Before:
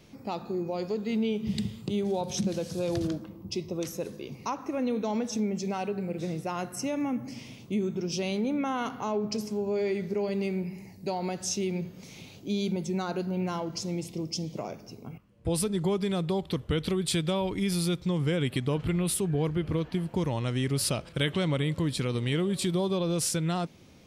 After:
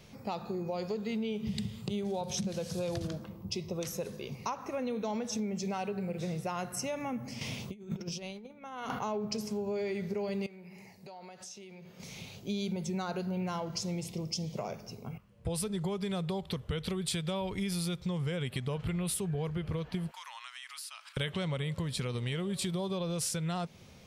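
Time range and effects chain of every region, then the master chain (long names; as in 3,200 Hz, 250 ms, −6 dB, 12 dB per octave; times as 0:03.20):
0:07.41–0:08.99: mains-hum notches 60/120/180/240 Hz + compressor whose output falls as the input rises −37 dBFS, ratio −0.5
0:10.46–0:12.00: high-pass filter 480 Hz 6 dB per octave + high-shelf EQ 6,000 Hz −6.5 dB + downward compressor, threshold −46 dBFS
0:20.11–0:21.17: Butterworth high-pass 1,000 Hz + downward compressor, threshold −43 dBFS
whole clip: parametric band 300 Hz −14 dB 0.36 octaves; downward compressor 3 to 1, threshold −34 dBFS; level +1.5 dB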